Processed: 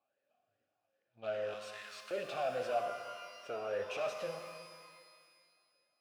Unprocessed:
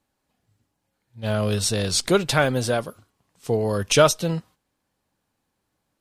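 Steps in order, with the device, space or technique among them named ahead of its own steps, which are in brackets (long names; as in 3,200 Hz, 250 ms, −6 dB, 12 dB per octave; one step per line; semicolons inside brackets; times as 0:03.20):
talk box (tube saturation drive 32 dB, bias 0.6; formant filter swept between two vowels a-e 2.5 Hz)
0:01.54–0:02.11: Chebyshev high-pass filter 960 Hz, order 5
reverb with rising layers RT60 1.9 s, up +12 semitones, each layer −8 dB, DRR 5.5 dB
level +6.5 dB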